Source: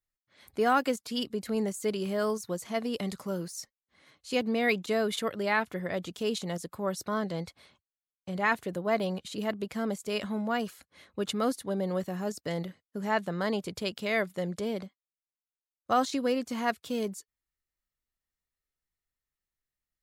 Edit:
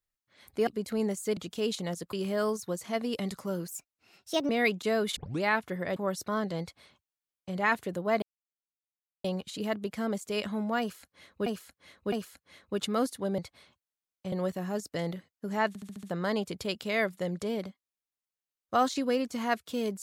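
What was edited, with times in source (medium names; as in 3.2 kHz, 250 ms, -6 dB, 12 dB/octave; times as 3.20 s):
0.67–1.24 s: delete
3.49–4.53 s: speed 128%
5.20 s: tape start 0.26 s
6.00–6.76 s: move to 1.94 s
7.41–8.35 s: copy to 11.84 s
9.02 s: insert silence 1.02 s
10.58–11.24 s: loop, 3 plays
13.20 s: stutter 0.07 s, 6 plays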